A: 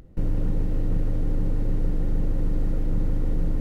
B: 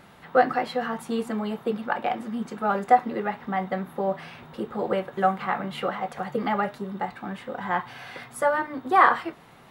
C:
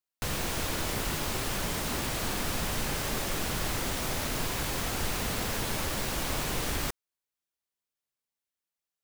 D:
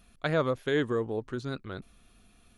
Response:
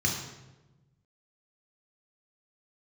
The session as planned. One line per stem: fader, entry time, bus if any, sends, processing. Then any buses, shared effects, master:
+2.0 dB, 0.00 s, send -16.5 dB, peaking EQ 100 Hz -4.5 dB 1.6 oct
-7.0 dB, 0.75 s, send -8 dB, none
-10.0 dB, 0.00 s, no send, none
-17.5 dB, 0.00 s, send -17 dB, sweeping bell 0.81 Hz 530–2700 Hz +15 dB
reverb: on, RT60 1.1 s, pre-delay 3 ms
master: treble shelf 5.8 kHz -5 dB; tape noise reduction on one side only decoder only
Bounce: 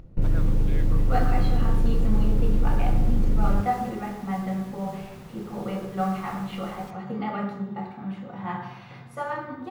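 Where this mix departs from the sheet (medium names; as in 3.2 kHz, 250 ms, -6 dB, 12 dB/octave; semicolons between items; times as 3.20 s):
stem C -10.0 dB -> -16.0 dB; master: missing treble shelf 5.8 kHz -5 dB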